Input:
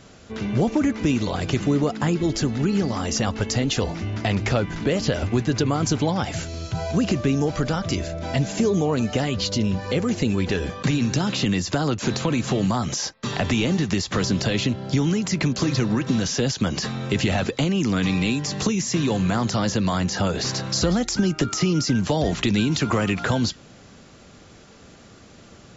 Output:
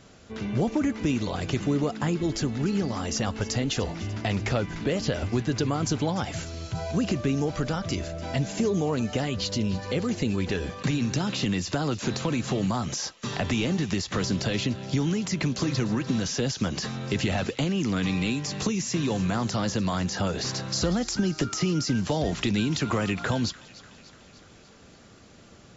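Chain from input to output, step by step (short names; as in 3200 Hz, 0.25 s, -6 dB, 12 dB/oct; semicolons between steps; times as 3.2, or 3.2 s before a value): thin delay 0.296 s, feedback 62%, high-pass 1500 Hz, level -16.5 dB; gain -4.5 dB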